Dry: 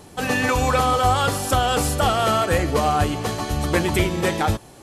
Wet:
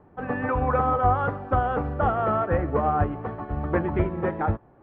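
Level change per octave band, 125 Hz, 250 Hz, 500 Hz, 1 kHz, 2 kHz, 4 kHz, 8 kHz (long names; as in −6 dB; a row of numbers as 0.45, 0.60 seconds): −3.5 dB, −4.0 dB, −3.5 dB, −3.5 dB, −8.5 dB, below −25 dB, below −40 dB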